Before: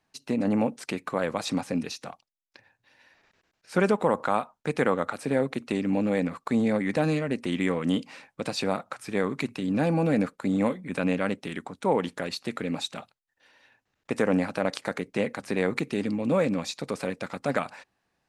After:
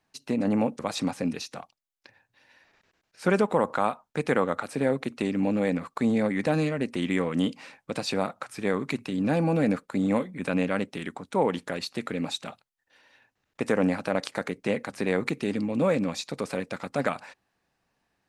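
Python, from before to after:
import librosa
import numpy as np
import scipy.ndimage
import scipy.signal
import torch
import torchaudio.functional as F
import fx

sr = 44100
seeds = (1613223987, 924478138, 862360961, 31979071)

y = fx.edit(x, sr, fx.cut(start_s=0.79, length_s=0.5), tone=tone)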